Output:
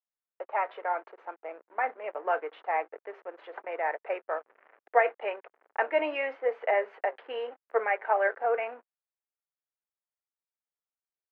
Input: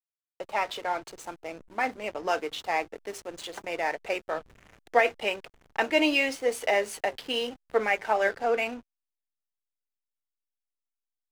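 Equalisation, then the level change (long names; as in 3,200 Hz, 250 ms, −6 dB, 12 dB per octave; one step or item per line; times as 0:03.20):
high-pass filter 440 Hz 24 dB per octave
low-pass filter 1,900 Hz 24 dB per octave
0.0 dB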